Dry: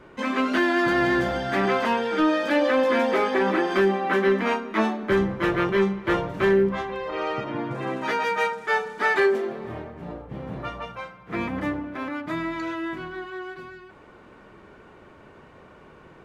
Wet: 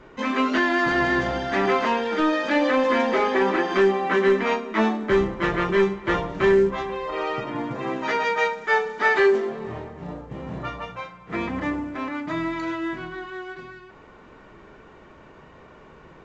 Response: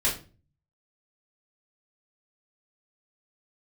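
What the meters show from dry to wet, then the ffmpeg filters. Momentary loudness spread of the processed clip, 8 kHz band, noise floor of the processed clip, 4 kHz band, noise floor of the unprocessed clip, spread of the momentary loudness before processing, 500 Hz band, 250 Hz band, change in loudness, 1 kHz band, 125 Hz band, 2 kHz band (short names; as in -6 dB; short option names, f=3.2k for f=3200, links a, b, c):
15 LU, n/a, -48 dBFS, +1.0 dB, -50 dBFS, 15 LU, +1.5 dB, 0.0 dB, +1.0 dB, +1.5 dB, -0.5 dB, +1.5 dB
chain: -filter_complex "[0:a]asplit=2[a][b];[1:a]atrim=start_sample=2205[c];[b][c]afir=irnorm=-1:irlink=0,volume=-18dB[d];[a][d]amix=inputs=2:normalize=0" -ar 16000 -c:a pcm_mulaw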